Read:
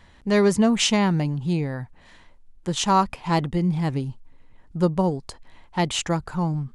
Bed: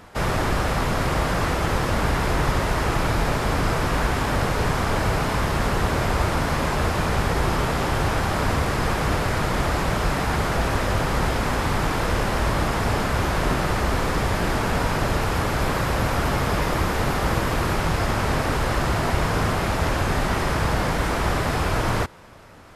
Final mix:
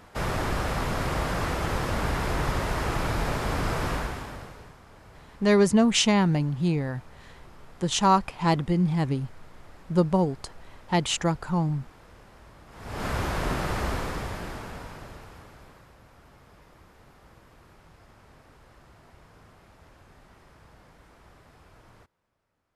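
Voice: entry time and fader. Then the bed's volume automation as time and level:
5.15 s, -1.0 dB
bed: 3.91 s -5.5 dB
4.79 s -29 dB
12.66 s -29 dB
13.06 s -6 dB
13.87 s -6 dB
15.98 s -32 dB

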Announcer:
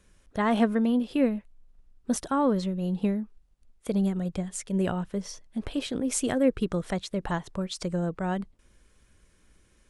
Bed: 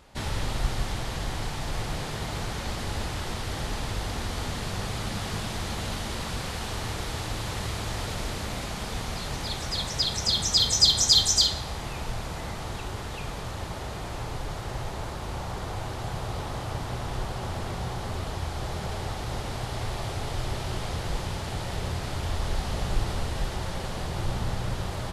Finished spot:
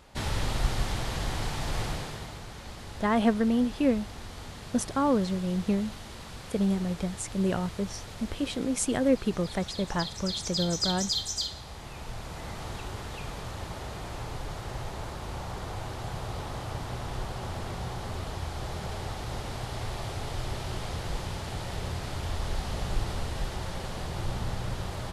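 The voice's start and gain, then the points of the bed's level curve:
2.65 s, -0.5 dB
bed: 1.85 s 0 dB
2.41 s -10.5 dB
11.49 s -10.5 dB
12.63 s -3 dB

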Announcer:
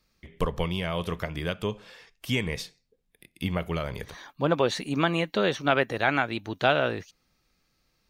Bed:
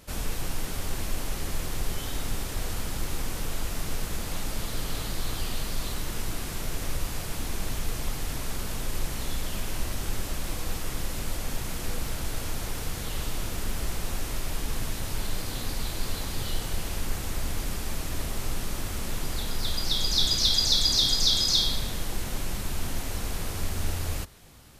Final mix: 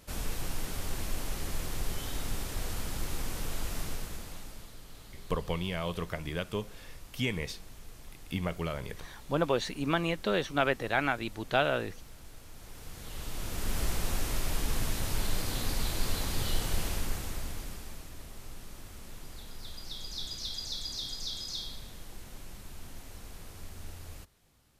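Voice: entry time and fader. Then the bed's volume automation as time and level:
4.90 s, -4.5 dB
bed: 3.81 s -4 dB
4.80 s -18.5 dB
12.49 s -18.5 dB
13.79 s -0.5 dB
16.84 s -0.5 dB
18.15 s -15 dB

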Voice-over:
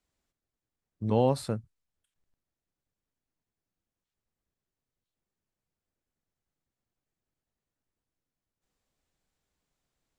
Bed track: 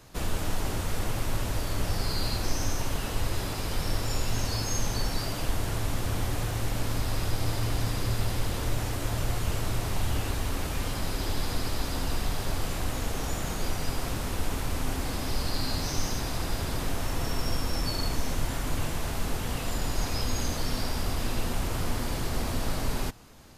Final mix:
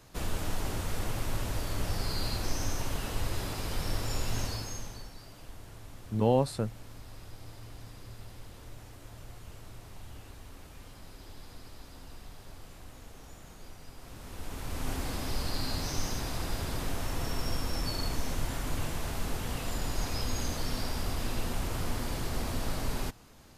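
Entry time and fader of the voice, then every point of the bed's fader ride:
5.10 s, -0.5 dB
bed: 4.42 s -3.5 dB
5.14 s -18.5 dB
13.95 s -18.5 dB
14.90 s -3.5 dB

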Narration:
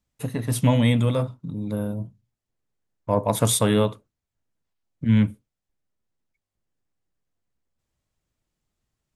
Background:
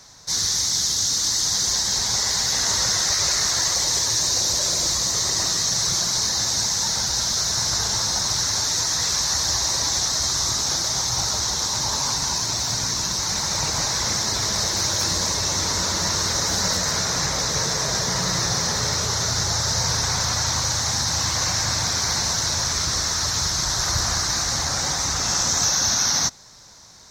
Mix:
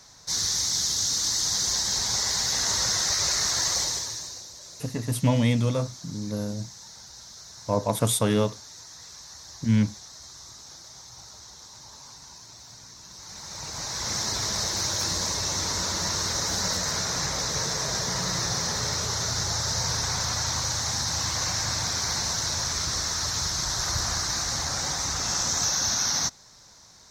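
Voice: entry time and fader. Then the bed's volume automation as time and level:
4.60 s, -3.0 dB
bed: 3.80 s -4 dB
4.51 s -22.5 dB
13.00 s -22.5 dB
14.19 s -5 dB

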